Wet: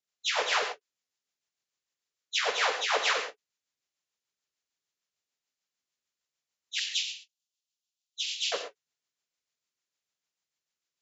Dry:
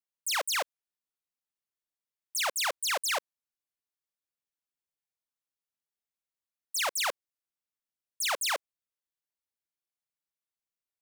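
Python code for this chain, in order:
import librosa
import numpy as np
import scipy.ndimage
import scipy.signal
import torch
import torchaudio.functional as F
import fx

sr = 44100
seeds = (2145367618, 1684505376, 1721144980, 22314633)

y = fx.partial_stretch(x, sr, pct=76)
y = fx.steep_highpass(y, sr, hz=2700.0, slope=48, at=(6.79, 8.52))
y = fx.rotary(y, sr, hz=6.7)
y = fx.rev_gated(y, sr, seeds[0], gate_ms=170, shape='flat', drr_db=5.5)
y = fx.end_taper(y, sr, db_per_s=510.0)
y = y * 10.0 ** (5.5 / 20.0)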